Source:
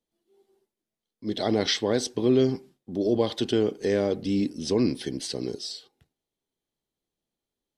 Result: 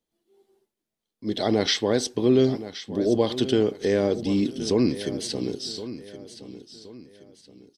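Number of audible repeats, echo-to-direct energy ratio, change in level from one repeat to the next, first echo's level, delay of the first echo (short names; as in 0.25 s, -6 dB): 3, -13.5 dB, -9.0 dB, -14.0 dB, 1.071 s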